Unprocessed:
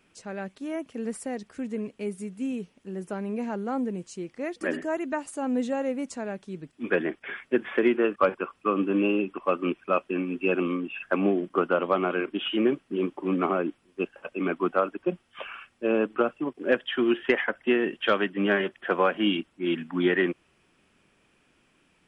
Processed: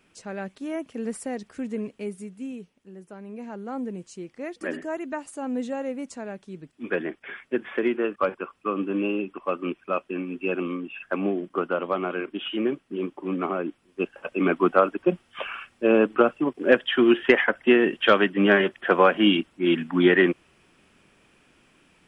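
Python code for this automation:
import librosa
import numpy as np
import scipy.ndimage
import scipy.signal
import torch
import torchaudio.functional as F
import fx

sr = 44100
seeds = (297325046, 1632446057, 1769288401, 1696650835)

y = fx.gain(x, sr, db=fx.line((1.84, 1.5), (3.08, -10.0), (3.88, -2.0), (13.55, -2.0), (14.41, 5.5)))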